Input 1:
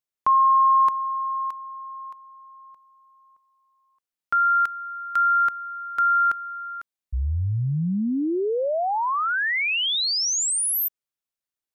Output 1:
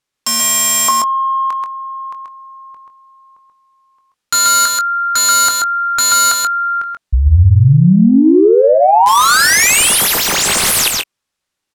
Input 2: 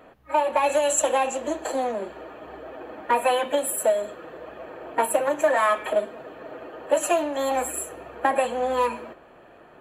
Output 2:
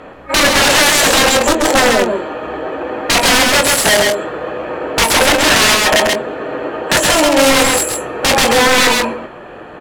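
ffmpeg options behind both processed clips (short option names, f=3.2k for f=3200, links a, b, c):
-filter_complex "[0:a]highshelf=f=8.1k:g=4.5,bandreject=f=670:w=12,acontrast=73,aeval=exprs='(mod(5.01*val(0)+1,2)-1)/5.01':c=same,adynamicsmooth=sensitivity=1.5:basefreq=7.5k,asplit=2[a][b];[b]adelay=22,volume=-10dB[c];[a][c]amix=inputs=2:normalize=0,aecho=1:1:123|133:0.133|0.668,alimiter=level_in=10dB:limit=-1dB:release=50:level=0:latency=1,volume=-1dB"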